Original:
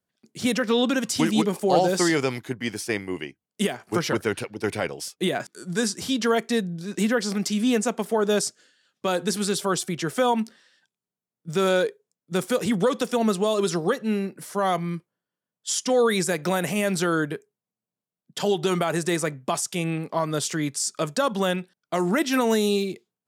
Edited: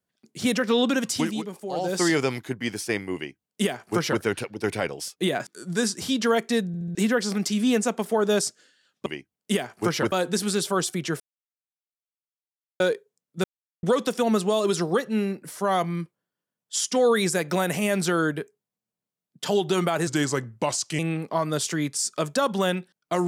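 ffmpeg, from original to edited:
ffmpeg -i in.wav -filter_complex "[0:a]asplit=15[link_01][link_02][link_03][link_04][link_05][link_06][link_07][link_08][link_09][link_10][link_11][link_12][link_13][link_14][link_15];[link_01]atrim=end=1.42,asetpts=PTS-STARTPTS,afade=type=out:start_time=1.08:duration=0.34:silence=0.281838[link_16];[link_02]atrim=start=1.42:end=1.75,asetpts=PTS-STARTPTS,volume=-11dB[link_17];[link_03]atrim=start=1.75:end=6.742,asetpts=PTS-STARTPTS,afade=type=in:duration=0.34:silence=0.281838[link_18];[link_04]atrim=start=6.668:end=6.742[link_19];[link_05]atrim=start=6.668:end=6.742[link_20];[link_06]atrim=start=6.668:end=6.742[link_21];[link_07]atrim=start=6.948:end=9.062[link_22];[link_08]atrim=start=3.158:end=4.222[link_23];[link_09]atrim=start=9.058:end=10.14,asetpts=PTS-STARTPTS,afade=type=out:start_time=1.078:duration=0.004:curve=hsin[link_24];[link_10]atrim=start=10.14:end=11.74,asetpts=PTS-STARTPTS,volume=0[link_25];[link_11]atrim=start=11.74:end=12.38,asetpts=PTS-STARTPTS,afade=type=in:duration=0.004:curve=hsin,afade=type=out:start_time=0.636:duration=0.004:curve=hsin[link_26];[link_12]atrim=start=12.38:end=12.77,asetpts=PTS-STARTPTS,volume=0[link_27];[link_13]atrim=start=12.77:end=19.014,asetpts=PTS-STARTPTS,afade=type=in:duration=0.004:curve=hsin[link_28];[link_14]atrim=start=19.01:end=19.8,asetpts=PTS-STARTPTS,asetrate=37926,aresample=44100,atrim=end_sample=40510,asetpts=PTS-STARTPTS[link_29];[link_15]atrim=start=19.796[link_30];[link_16][link_17][link_18]concat=n=3:v=0:a=1[link_31];[link_31][link_19]acrossfade=duration=0.004:curve1=hsin:curve2=hsin[link_32];[link_32][link_20]acrossfade=duration=0.004:curve1=hsin:curve2=hsin[link_33];[link_33][link_21]acrossfade=duration=0.004:curve1=hsin:curve2=hsin[link_34];[link_34][link_22]acrossfade=duration=0.004:curve1=hsin:curve2=hsin[link_35];[link_35][link_23]acrossfade=duration=0.004:curve1=hsin:curve2=hsin[link_36];[link_24][link_25][link_26][link_27][link_28]concat=n=5:v=0:a=1[link_37];[link_36][link_37]acrossfade=duration=0.004:curve1=hsin:curve2=hsin[link_38];[link_38][link_29]acrossfade=duration=0.004:curve1=hsin:curve2=hsin[link_39];[link_39][link_30]acrossfade=duration=0.004:curve1=hsin:curve2=hsin" out.wav

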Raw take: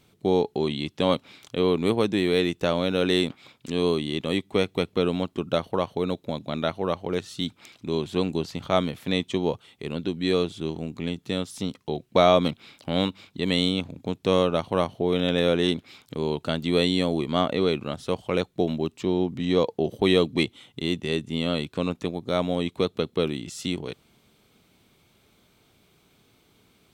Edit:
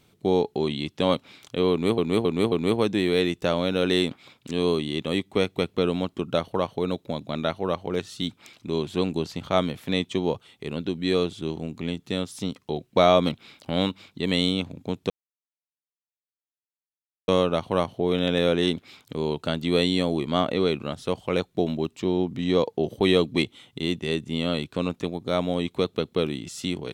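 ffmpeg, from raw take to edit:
ffmpeg -i in.wav -filter_complex "[0:a]asplit=5[link_01][link_02][link_03][link_04][link_05];[link_01]atrim=end=1.982[link_06];[link_02]atrim=start=1.708:end=1.982[link_07];[link_03]atrim=start=1.708:end=1.982[link_08];[link_04]atrim=start=1.708:end=14.29,asetpts=PTS-STARTPTS,afade=type=out:start_time=12.578:duration=0.004:curve=hsin,apad=pad_dur=2.18[link_09];[link_05]atrim=start=14.29,asetpts=PTS-STARTPTS,afade=type=in:duration=0.004:curve=hsin[link_10];[link_06][link_07]acrossfade=duration=0.004:curve1=hsin:curve2=hsin[link_11];[link_11][link_08]acrossfade=duration=0.004:curve1=hsin:curve2=hsin[link_12];[link_09][link_10]concat=n=2:v=0:a=1[link_13];[link_12][link_13]acrossfade=duration=0.004:curve1=hsin:curve2=hsin" out.wav

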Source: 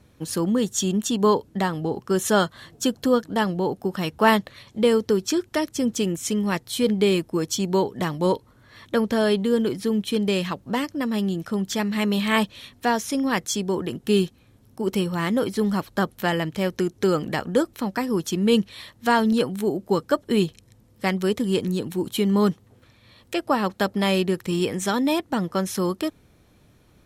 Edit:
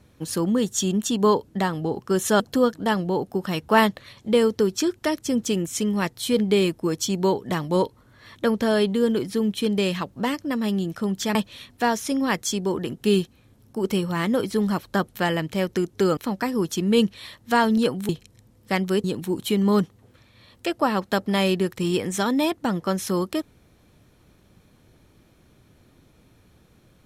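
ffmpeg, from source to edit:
ffmpeg -i in.wav -filter_complex "[0:a]asplit=6[link_01][link_02][link_03][link_04][link_05][link_06];[link_01]atrim=end=2.402[link_07];[link_02]atrim=start=2.898:end=11.852[link_08];[link_03]atrim=start=12.378:end=17.202[link_09];[link_04]atrim=start=17.718:end=19.642[link_10];[link_05]atrim=start=20.418:end=21.372[link_11];[link_06]atrim=start=21.718[link_12];[link_07][link_08]acrossfade=duration=0.004:curve1=hsin:curve2=hsin[link_13];[link_13][link_09]acrossfade=duration=0.004:curve1=hsin:curve2=hsin[link_14];[link_14][link_10]acrossfade=duration=0.004:curve1=hsin:curve2=hsin[link_15];[link_15][link_11]acrossfade=duration=0.004:curve1=hsin:curve2=hsin[link_16];[link_16][link_12]acrossfade=duration=0.004:curve1=hsin:curve2=hsin" out.wav

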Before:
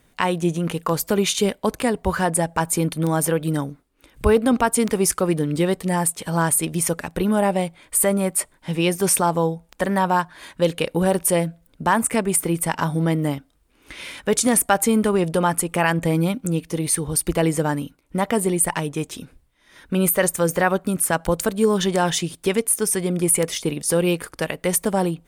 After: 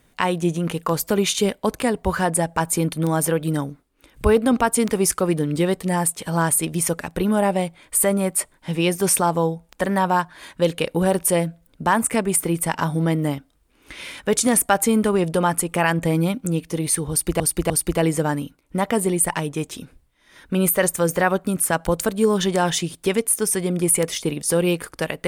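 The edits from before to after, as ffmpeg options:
ffmpeg -i in.wav -filter_complex "[0:a]asplit=3[link_01][link_02][link_03];[link_01]atrim=end=17.402[link_04];[link_02]atrim=start=17.098:end=17.402[link_05];[link_03]atrim=start=17.098[link_06];[link_04][link_05]acrossfade=duration=0.004:curve1=hsin:curve2=hsin[link_07];[link_07][link_06]acrossfade=duration=0.004:curve1=hsin:curve2=hsin" out.wav

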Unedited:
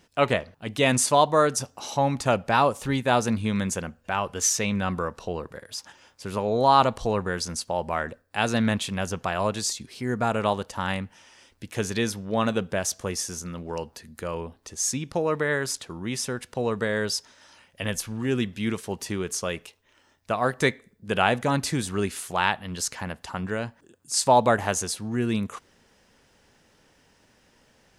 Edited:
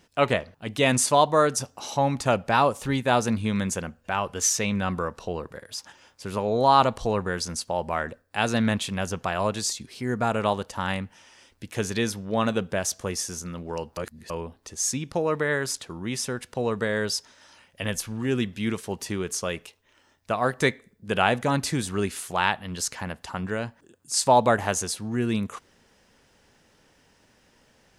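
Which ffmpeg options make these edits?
ffmpeg -i in.wav -filter_complex "[0:a]asplit=3[link_01][link_02][link_03];[link_01]atrim=end=13.972[link_04];[link_02]atrim=start=13.968:end=14.302,asetpts=PTS-STARTPTS,areverse[link_05];[link_03]atrim=start=14.298[link_06];[link_04][link_05]acrossfade=duration=0.004:curve1=hsin:curve2=hsin[link_07];[link_07][link_06]acrossfade=duration=0.004:curve1=hsin:curve2=hsin" out.wav

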